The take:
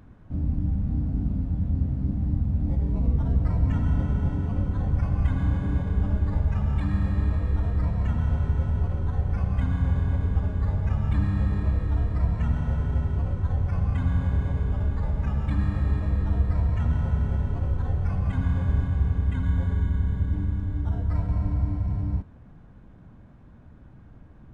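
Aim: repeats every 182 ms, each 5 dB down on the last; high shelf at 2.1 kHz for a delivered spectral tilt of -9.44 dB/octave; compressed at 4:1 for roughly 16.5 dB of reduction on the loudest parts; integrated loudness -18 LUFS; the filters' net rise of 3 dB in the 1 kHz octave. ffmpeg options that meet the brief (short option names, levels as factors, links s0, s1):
-af "equalizer=f=1000:t=o:g=5.5,highshelf=f=2100:g=-8,acompressor=threshold=0.0112:ratio=4,aecho=1:1:182|364|546|728|910|1092|1274:0.562|0.315|0.176|0.0988|0.0553|0.031|0.0173,volume=10"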